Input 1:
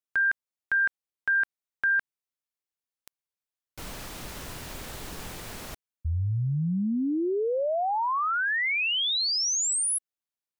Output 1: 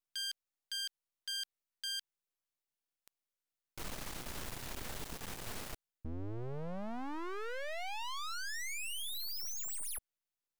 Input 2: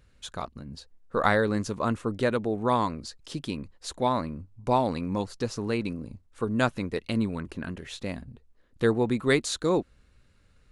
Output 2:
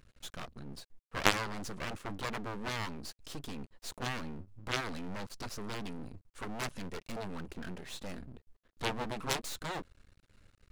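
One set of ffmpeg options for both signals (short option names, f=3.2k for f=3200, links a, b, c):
-af "aeval=exprs='max(val(0),0)':c=same,aeval=exprs='0.501*(cos(1*acos(clip(val(0)/0.501,-1,1)))-cos(1*PI/2))+0.0316*(cos(3*acos(clip(val(0)/0.501,-1,1)))-cos(3*PI/2))+0.0398*(cos(4*acos(clip(val(0)/0.501,-1,1)))-cos(4*PI/2))+0.01*(cos(7*acos(clip(val(0)/0.501,-1,1)))-cos(7*PI/2))+0.0708*(cos(8*acos(clip(val(0)/0.501,-1,1)))-cos(8*PI/2))':c=same,volume=5.5dB"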